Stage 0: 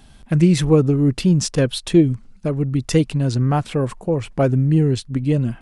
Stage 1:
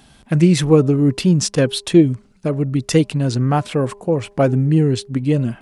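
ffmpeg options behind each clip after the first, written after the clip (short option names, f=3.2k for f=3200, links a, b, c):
-af "highpass=f=130:p=1,bandreject=f=202.4:t=h:w=4,bandreject=f=404.8:t=h:w=4,bandreject=f=607.2:t=h:w=4,bandreject=f=809.6:t=h:w=4,bandreject=f=1.012k:t=h:w=4,volume=3dB"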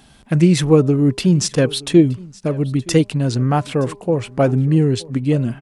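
-af "aecho=1:1:921:0.0794"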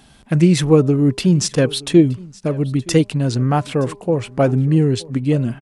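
-af "aresample=32000,aresample=44100"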